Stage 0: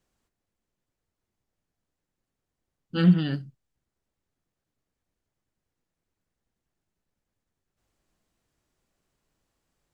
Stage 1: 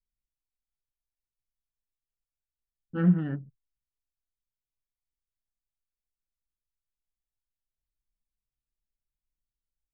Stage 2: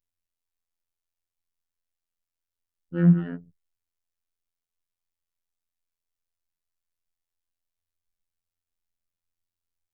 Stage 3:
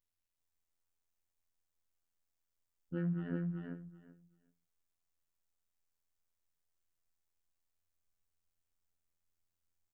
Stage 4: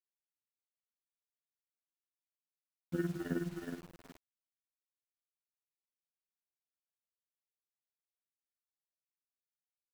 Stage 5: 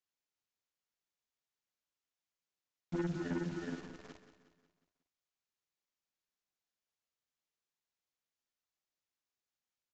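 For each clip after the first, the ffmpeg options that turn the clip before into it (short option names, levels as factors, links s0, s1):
-af "anlmdn=0.631,lowpass=f=1800:w=0.5412,lowpass=f=1800:w=1.3066,volume=0.668"
-af "afftfilt=real='hypot(re,im)*cos(PI*b)':imag='0':win_size=2048:overlap=0.75,volume=1.78"
-af "alimiter=limit=0.15:level=0:latency=1:release=86,acompressor=threshold=0.0126:ratio=2,aecho=1:1:383|766|1149:0.668|0.114|0.0193,volume=0.794"
-filter_complex "[0:a]asplit=2[s0][s1];[s1]adelay=32,volume=0.668[s2];[s0][s2]amix=inputs=2:normalize=0,tremolo=f=19:d=0.75,acrusher=bits=9:mix=0:aa=0.000001,volume=2"
-af "aresample=16000,asoftclip=type=tanh:threshold=0.0211,aresample=44100,aecho=1:1:181|362|543|724|905:0.266|0.128|0.0613|0.0294|0.0141,volume=1.5"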